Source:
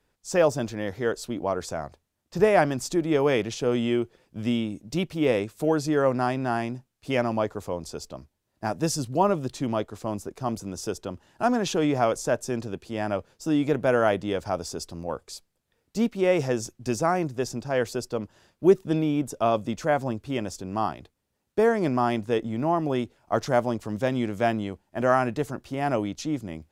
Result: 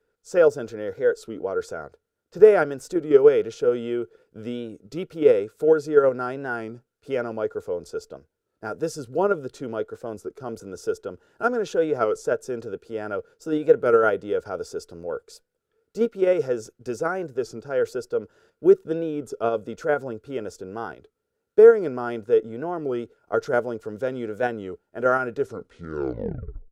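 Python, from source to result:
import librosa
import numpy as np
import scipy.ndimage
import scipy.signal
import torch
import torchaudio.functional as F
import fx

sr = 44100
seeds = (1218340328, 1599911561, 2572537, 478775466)

p1 = fx.tape_stop_end(x, sr, length_s=1.41)
p2 = fx.level_steps(p1, sr, step_db=21)
p3 = p1 + (p2 * librosa.db_to_amplitude(-2.0))
p4 = fx.small_body(p3, sr, hz=(450.0, 1400.0), ring_ms=35, db=18)
p5 = fx.record_warp(p4, sr, rpm=33.33, depth_cents=100.0)
y = p5 * librosa.db_to_amplitude(-10.5)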